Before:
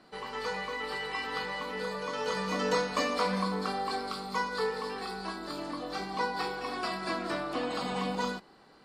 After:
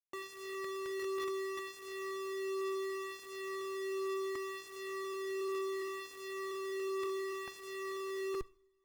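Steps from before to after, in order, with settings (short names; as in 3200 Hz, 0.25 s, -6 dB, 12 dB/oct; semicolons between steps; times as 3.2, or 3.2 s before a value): minimum comb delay 7.7 ms; low shelf 380 Hz +3 dB; compressor 3:1, threshold -36 dBFS, peak gain reduction 9 dB; vocoder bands 16, square 386 Hz; Schmitt trigger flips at -49 dBFS; high shelf 4100 Hz -7.5 dB; on a send at -19 dB: reverb, pre-delay 3 ms; on the sum: cascading flanger falling 0.69 Hz; gain +7 dB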